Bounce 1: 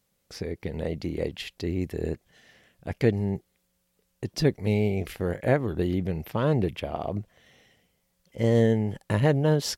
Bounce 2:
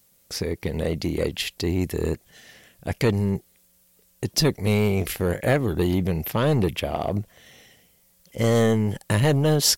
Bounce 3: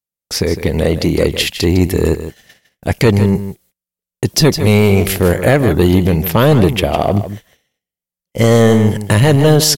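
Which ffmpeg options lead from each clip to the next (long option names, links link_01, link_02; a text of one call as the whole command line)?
ffmpeg -i in.wav -filter_complex "[0:a]highshelf=frequency=5900:gain=12,acrossover=split=2000[link_01][link_02];[link_01]asoftclip=type=tanh:threshold=-20dB[link_03];[link_03][link_02]amix=inputs=2:normalize=0,volume=6dB" out.wav
ffmpeg -i in.wav -af "agate=range=-41dB:threshold=-46dB:ratio=16:detection=peak,aecho=1:1:156:0.266,alimiter=level_in=12.5dB:limit=-1dB:release=50:level=0:latency=1,volume=-1dB" out.wav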